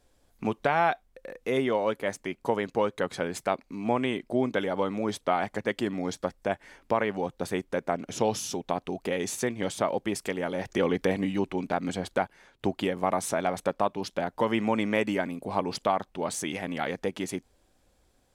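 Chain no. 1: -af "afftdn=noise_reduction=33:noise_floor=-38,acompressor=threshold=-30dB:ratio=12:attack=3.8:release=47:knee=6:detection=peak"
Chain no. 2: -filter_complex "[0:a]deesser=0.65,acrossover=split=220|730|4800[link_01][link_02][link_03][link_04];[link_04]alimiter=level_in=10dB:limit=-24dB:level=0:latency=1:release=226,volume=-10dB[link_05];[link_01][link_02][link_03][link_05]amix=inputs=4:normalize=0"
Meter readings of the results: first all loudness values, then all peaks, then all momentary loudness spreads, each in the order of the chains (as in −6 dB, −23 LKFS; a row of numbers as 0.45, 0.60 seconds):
−36.5, −30.0 LKFS; −18.5, −10.5 dBFS; 5, 6 LU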